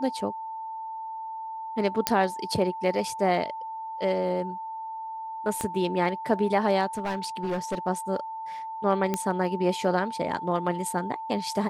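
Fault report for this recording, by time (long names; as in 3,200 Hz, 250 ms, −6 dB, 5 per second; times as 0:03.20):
whistle 890 Hz −33 dBFS
0:02.07: click −4 dBFS
0:05.61: click −15 dBFS
0:06.97–0:07.79: clipping −24.5 dBFS
0:09.14: click −12 dBFS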